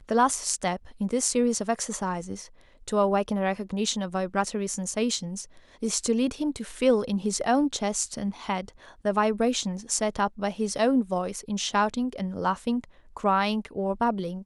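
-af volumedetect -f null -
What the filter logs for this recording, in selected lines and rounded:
mean_volume: -27.1 dB
max_volume: -7.0 dB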